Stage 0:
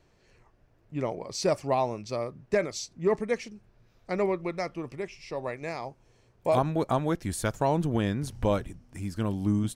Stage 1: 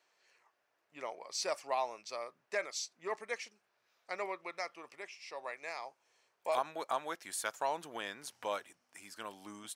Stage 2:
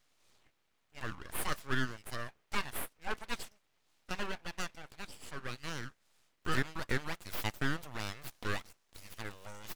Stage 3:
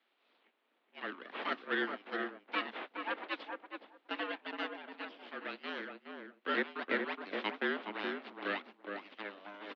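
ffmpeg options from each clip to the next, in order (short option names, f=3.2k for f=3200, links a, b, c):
-af "highpass=870,volume=-3dB"
-af "aeval=exprs='abs(val(0))':c=same,volume=3.5dB"
-filter_complex "[0:a]asplit=2[a][b];[b]adelay=418,lowpass=f=1.2k:p=1,volume=-3.5dB,asplit=2[c][d];[d]adelay=418,lowpass=f=1.2k:p=1,volume=0.16,asplit=2[e][f];[f]adelay=418,lowpass=f=1.2k:p=1,volume=0.16[g];[a][c][e][g]amix=inputs=4:normalize=0,highpass=f=150:t=q:w=0.5412,highpass=f=150:t=q:w=1.307,lowpass=f=3.6k:t=q:w=0.5176,lowpass=f=3.6k:t=q:w=0.7071,lowpass=f=3.6k:t=q:w=1.932,afreqshift=95,volume=1dB"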